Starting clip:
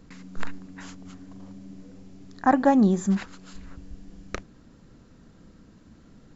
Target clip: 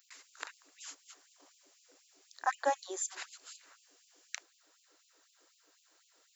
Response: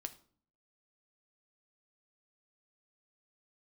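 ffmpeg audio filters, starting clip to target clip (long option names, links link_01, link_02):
-af "aemphasis=mode=production:type=riaa,afftfilt=real='re*gte(b*sr/1024,280*pow(2500/280,0.5+0.5*sin(2*PI*4*pts/sr)))':imag='im*gte(b*sr/1024,280*pow(2500/280,0.5+0.5*sin(2*PI*4*pts/sr)))':win_size=1024:overlap=0.75,volume=-7.5dB"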